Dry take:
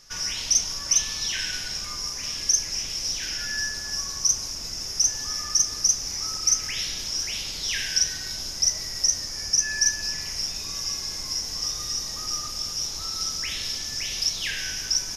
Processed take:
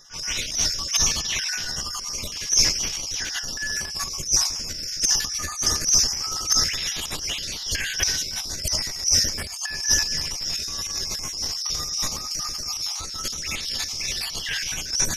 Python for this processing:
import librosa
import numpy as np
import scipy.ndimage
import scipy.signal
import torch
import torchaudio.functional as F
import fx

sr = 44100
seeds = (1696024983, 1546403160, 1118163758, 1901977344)

y = fx.spec_dropout(x, sr, seeds[0], share_pct=36)
y = fx.room_early_taps(y, sr, ms=(13, 71), db=(-8.0, -16.5))
y = fx.transient(y, sr, attack_db=-12, sustain_db=12)
y = F.gain(torch.from_numpy(y), 2.0).numpy()